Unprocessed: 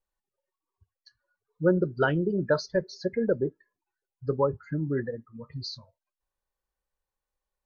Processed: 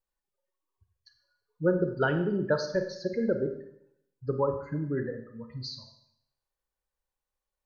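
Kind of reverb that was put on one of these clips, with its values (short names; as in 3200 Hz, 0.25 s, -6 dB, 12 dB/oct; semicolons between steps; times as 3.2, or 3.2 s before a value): Schroeder reverb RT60 0.75 s, combs from 31 ms, DRR 6.5 dB; gain -2.5 dB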